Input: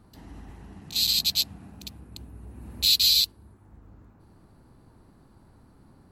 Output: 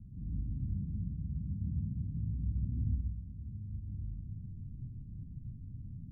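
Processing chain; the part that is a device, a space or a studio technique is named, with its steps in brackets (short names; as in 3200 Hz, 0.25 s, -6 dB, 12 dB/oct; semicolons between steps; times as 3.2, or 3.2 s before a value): club heard from the street (limiter -18 dBFS, peak gain reduction 10 dB; LPF 180 Hz 24 dB/oct; reverb RT60 0.75 s, pre-delay 94 ms, DRR -0.5 dB); gain +8 dB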